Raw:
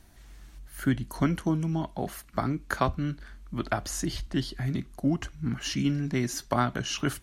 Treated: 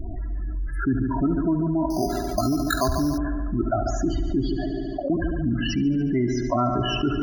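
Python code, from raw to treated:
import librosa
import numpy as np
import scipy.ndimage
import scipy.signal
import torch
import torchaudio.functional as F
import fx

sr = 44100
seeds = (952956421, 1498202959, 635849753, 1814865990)

y = fx.lowpass(x, sr, hz=1500.0, slope=6)
y = y + 0.54 * np.pad(y, (int(3.0 * sr / 1000.0), 0))[:len(y)]
y = fx.spec_topn(y, sr, count=16)
y = fx.ladder_highpass(y, sr, hz=510.0, resonance_pct=70, at=(4.55, 5.1))
y = fx.echo_heads(y, sr, ms=72, heads='first and second', feedback_pct=53, wet_db=-14.5)
y = fx.resample_bad(y, sr, factor=8, down='none', up='hold', at=(1.9, 3.18))
y = fx.env_flatten(y, sr, amount_pct=70)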